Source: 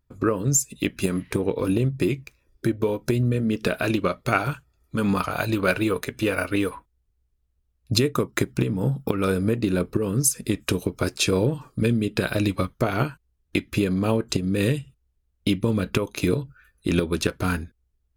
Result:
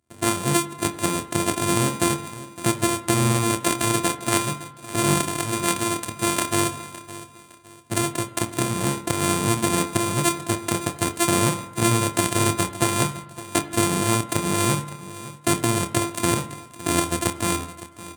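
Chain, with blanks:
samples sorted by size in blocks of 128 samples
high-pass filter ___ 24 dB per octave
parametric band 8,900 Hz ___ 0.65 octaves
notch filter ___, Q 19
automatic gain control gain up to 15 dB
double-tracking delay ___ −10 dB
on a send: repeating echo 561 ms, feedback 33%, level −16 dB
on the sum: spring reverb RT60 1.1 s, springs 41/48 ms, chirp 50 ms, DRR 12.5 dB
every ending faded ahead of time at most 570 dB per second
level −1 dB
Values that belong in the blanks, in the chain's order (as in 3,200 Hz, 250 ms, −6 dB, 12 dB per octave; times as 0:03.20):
87 Hz, +13 dB, 5,200 Hz, 27 ms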